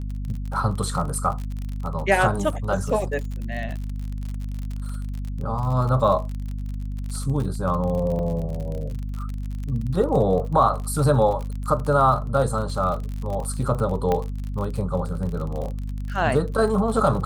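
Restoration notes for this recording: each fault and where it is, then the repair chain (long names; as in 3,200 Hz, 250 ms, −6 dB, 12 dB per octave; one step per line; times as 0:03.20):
surface crackle 44 per second −29 dBFS
mains hum 50 Hz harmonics 5 −29 dBFS
0:03.69: drop-out 4.4 ms
0:08.19: drop-out 3.9 ms
0:14.12: click −11 dBFS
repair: click removal
hum removal 50 Hz, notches 5
repair the gap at 0:03.69, 4.4 ms
repair the gap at 0:08.19, 3.9 ms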